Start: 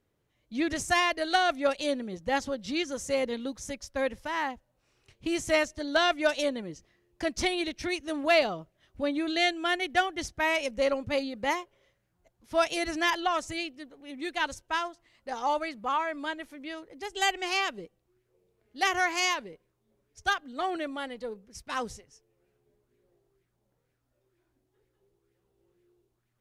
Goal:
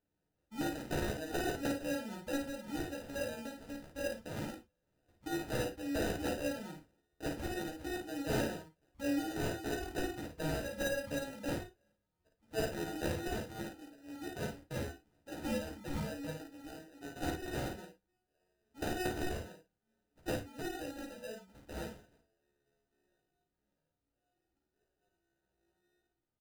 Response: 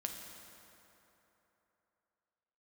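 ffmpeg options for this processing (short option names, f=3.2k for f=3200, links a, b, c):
-filter_complex "[0:a]equalizer=f=190:w=7.6:g=8.5,aresample=16000,aeval=exprs='(mod(7.5*val(0)+1,2)-1)/7.5':c=same,aresample=44100,acrusher=samples=40:mix=1:aa=0.000001,aecho=1:1:14|53:0.631|0.631[a];[1:a]atrim=start_sample=2205,afade=t=out:st=0.15:d=0.01,atrim=end_sample=7056,asetrate=66150,aresample=44100[b];[a][b]afir=irnorm=-1:irlink=0,volume=-6.5dB"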